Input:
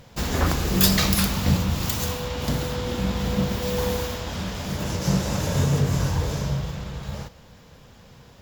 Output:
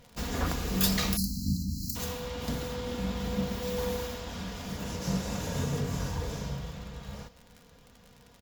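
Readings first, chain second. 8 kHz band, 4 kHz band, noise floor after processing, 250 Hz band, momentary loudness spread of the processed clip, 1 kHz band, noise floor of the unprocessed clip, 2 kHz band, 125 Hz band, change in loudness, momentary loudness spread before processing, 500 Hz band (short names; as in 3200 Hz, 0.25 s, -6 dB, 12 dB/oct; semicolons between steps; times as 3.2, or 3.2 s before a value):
-8.0 dB, -8.5 dB, -57 dBFS, -7.5 dB, 11 LU, -8.5 dB, -50 dBFS, -8.5 dB, -10.0 dB, -8.5 dB, 11 LU, -7.0 dB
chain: crackle 44/s -31 dBFS; spectral delete 1.17–1.96, 310–4000 Hz; comb 4.2 ms, depth 39%; gain -8.5 dB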